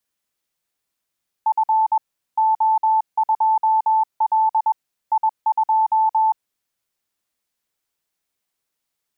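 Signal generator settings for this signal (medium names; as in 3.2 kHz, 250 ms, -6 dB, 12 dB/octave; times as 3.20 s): Morse "F O2L I2" 21 wpm 878 Hz -13.5 dBFS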